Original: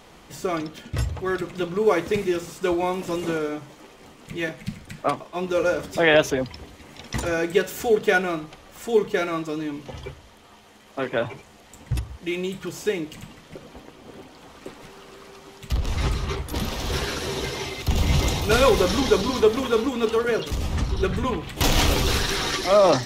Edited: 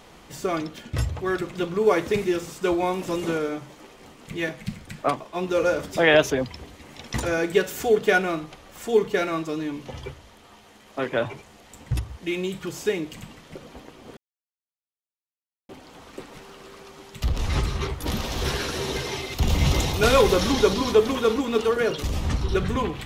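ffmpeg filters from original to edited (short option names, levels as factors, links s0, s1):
-filter_complex "[0:a]asplit=2[s0][s1];[s0]atrim=end=14.17,asetpts=PTS-STARTPTS,afade=t=out:st=14.166:d=0.004:c=hsin,apad=pad_dur=1.52[s2];[s1]atrim=start=14.17,asetpts=PTS-STARTPTS,afade=t=in:d=0.004:c=hsin[s3];[s2][s3]concat=n=2:v=0:a=1"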